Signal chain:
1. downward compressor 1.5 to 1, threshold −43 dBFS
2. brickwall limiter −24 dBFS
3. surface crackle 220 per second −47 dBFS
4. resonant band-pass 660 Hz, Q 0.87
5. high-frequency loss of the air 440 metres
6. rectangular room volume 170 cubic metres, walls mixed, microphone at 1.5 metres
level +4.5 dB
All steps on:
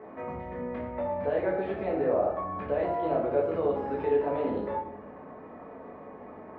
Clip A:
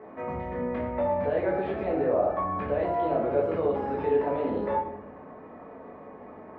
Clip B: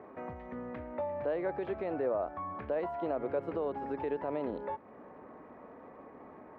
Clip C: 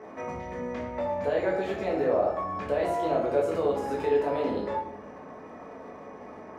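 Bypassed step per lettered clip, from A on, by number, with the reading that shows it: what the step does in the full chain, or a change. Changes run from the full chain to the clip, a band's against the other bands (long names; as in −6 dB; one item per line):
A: 1, average gain reduction 5.0 dB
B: 6, echo-to-direct ratio 4.0 dB to none audible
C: 5, 2 kHz band +3.0 dB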